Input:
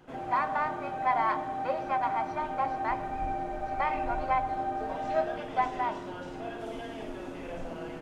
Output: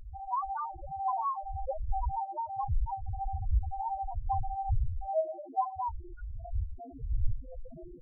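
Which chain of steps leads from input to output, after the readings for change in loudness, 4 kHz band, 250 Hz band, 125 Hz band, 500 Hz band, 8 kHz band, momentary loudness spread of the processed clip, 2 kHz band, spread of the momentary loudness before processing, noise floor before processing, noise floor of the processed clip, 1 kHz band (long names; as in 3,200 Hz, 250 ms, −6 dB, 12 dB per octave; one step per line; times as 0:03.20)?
−3.5 dB, below −35 dB, −16.0 dB, +9.5 dB, −6.0 dB, can't be measured, 10 LU, below −25 dB, 11 LU, −41 dBFS, −47 dBFS, −4.5 dB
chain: wind on the microphone 81 Hz −30 dBFS
spectral peaks only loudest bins 2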